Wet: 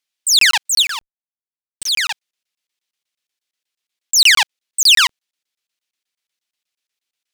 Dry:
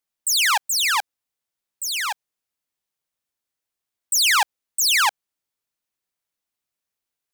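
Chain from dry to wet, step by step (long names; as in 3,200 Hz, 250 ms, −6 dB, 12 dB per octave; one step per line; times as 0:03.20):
0:00.82–0:01.89: comparator with hysteresis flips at −34 dBFS
meter weighting curve D
regular buffer underruns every 0.12 s, samples 1,024, zero, from 0:00.39
level −1 dB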